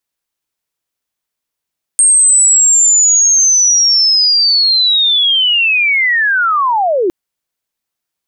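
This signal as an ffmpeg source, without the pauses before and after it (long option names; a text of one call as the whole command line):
ffmpeg -f lavfi -i "aevalsrc='pow(10,(-5-5*t/5.11)/20)*sin(2*PI*(8600*t-8270*t*t/(2*5.11)))':duration=5.11:sample_rate=44100" out.wav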